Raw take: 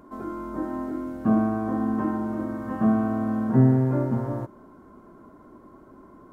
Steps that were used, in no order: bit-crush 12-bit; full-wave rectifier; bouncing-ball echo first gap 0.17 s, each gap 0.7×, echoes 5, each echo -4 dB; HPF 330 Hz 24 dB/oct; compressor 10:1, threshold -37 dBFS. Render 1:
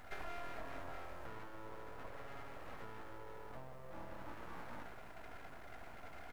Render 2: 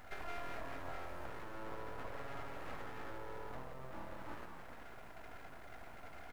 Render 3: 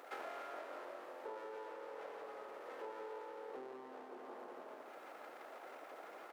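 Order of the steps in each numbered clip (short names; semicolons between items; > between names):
bouncing-ball echo > compressor > bit-crush > HPF > full-wave rectifier; compressor > HPF > bit-crush > bouncing-ball echo > full-wave rectifier; full-wave rectifier > bouncing-ball echo > bit-crush > compressor > HPF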